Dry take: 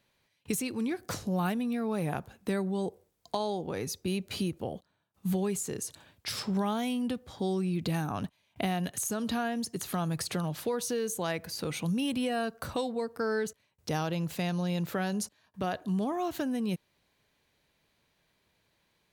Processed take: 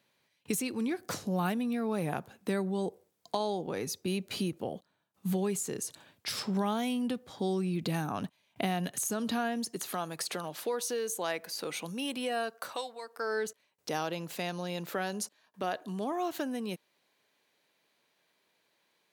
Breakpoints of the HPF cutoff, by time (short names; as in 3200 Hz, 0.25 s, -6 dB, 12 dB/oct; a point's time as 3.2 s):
9.45 s 150 Hz
10.02 s 360 Hz
12.39 s 360 Hz
13 s 980 Hz
13.46 s 290 Hz